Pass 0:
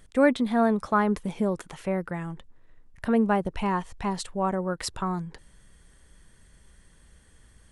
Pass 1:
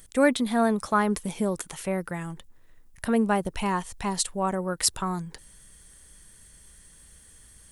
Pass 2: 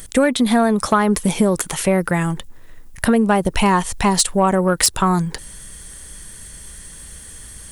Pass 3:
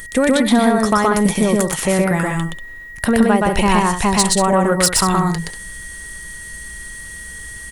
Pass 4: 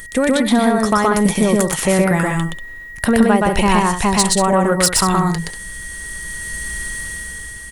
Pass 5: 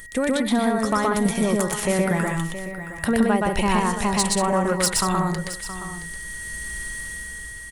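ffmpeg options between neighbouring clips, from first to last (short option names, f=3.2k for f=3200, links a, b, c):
-af "aemphasis=mode=production:type=75fm"
-af "acompressor=threshold=-25dB:ratio=16,aeval=exprs='0.299*sin(PI/2*2*val(0)/0.299)':c=same,volume=5dB"
-af "aecho=1:1:122.4|189.5:0.891|0.316,aeval=exprs='val(0)+0.0251*sin(2*PI*1900*n/s)':c=same,volume=-1dB"
-af "dynaudnorm=f=260:g=7:m=10dB,volume=-1dB"
-af "aecho=1:1:671:0.237,volume=-6.5dB"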